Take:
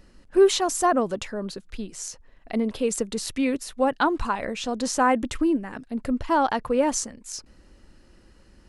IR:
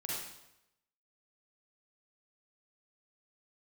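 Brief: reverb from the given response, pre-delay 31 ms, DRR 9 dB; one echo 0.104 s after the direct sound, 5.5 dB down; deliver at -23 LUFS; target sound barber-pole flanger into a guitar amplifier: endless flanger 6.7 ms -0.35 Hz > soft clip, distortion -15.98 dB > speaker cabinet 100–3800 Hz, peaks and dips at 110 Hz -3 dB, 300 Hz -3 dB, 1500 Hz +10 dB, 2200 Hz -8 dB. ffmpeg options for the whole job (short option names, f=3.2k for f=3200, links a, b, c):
-filter_complex "[0:a]aecho=1:1:104:0.531,asplit=2[a][b];[1:a]atrim=start_sample=2205,adelay=31[c];[b][c]afir=irnorm=-1:irlink=0,volume=-11dB[d];[a][d]amix=inputs=2:normalize=0,asplit=2[e][f];[f]adelay=6.7,afreqshift=-0.35[g];[e][g]amix=inputs=2:normalize=1,asoftclip=threshold=-16dB,highpass=100,equalizer=f=110:t=q:w=4:g=-3,equalizer=f=300:t=q:w=4:g=-3,equalizer=f=1.5k:t=q:w=4:g=10,equalizer=f=2.2k:t=q:w=4:g=-8,lowpass=f=3.8k:w=0.5412,lowpass=f=3.8k:w=1.3066,volume=4.5dB"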